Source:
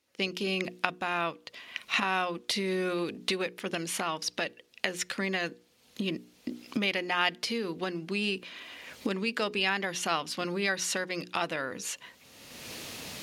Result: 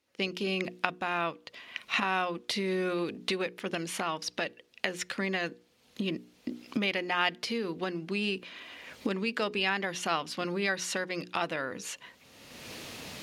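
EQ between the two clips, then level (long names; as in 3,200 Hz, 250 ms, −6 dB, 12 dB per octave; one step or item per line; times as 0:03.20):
high-shelf EQ 4,900 Hz −6 dB
0.0 dB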